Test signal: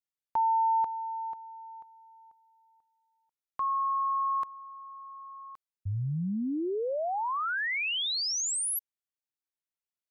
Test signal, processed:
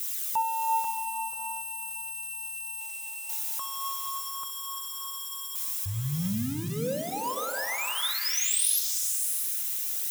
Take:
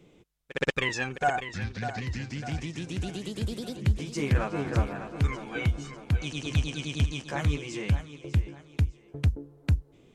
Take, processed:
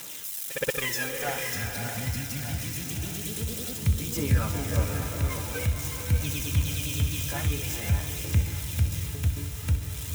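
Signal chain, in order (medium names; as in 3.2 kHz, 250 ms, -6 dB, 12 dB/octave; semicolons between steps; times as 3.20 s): zero-crossing glitches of -22 dBFS; band-stop 4.5 kHz, Q 9.3; comb of notches 370 Hz; phaser 0.48 Hz, delay 3.1 ms, feedback 34%; flutter echo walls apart 10.8 m, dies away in 0.31 s; swelling reverb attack 630 ms, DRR 4 dB; trim -2.5 dB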